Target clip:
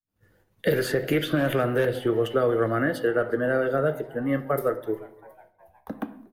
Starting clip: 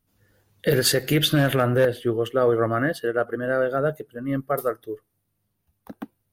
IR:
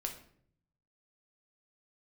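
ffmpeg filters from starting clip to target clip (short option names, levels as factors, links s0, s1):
-filter_complex "[0:a]acrossover=split=260|520|2000[s0][s1][s2][s3];[s0]acompressor=threshold=0.0126:ratio=4[s4];[s1]acompressor=threshold=0.0251:ratio=4[s5];[s2]acompressor=threshold=0.0178:ratio=4[s6];[s3]acompressor=threshold=0.0141:ratio=4[s7];[s4][s5][s6][s7]amix=inputs=4:normalize=0,asplit=5[s8][s9][s10][s11][s12];[s9]adelay=360,afreqshift=120,volume=0.0631[s13];[s10]adelay=720,afreqshift=240,volume=0.0372[s14];[s11]adelay=1080,afreqshift=360,volume=0.0219[s15];[s12]adelay=1440,afreqshift=480,volume=0.013[s16];[s8][s13][s14][s15][s16]amix=inputs=5:normalize=0,agate=range=0.0224:threshold=0.00158:ratio=3:detection=peak,asplit=2[s17][s18];[1:a]atrim=start_sample=2205,lowpass=2900[s19];[s18][s19]afir=irnorm=-1:irlink=0,volume=1.06[s20];[s17][s20]amix=inputs=2:normalize=0"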